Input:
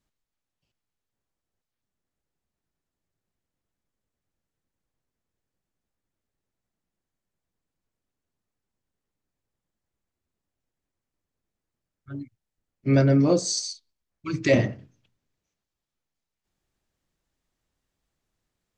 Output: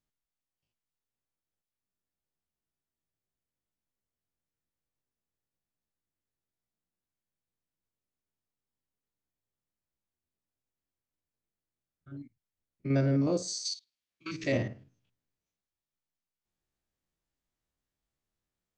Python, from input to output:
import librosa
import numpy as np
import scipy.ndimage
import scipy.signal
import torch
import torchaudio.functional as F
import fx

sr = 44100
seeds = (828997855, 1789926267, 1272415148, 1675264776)

y = fx.spec_steps(x, sr, hold_ms=50)
y = fx.weighting(y, sr, curve='D', at=(13.65, 14.44))
y = y * 10.0 ** (-7.5 / 20.0)